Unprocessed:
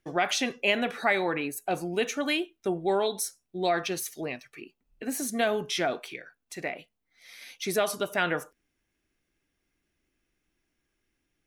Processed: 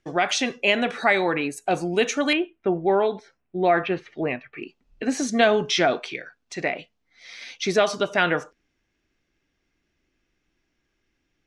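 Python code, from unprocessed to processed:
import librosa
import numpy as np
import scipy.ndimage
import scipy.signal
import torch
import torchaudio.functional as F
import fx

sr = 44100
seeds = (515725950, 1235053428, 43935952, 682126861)

y = fx.lowpass(x, sr, hz=fx.steps((0.0, 8400.0), (2.33, 2600.0), (4.63, 6400.0)), slope=24)
y = fx.rider(y, sr, range_db=4, speed_s=2.0)
y = F.gain(torch.from_numpy(y), 6.5).numpy()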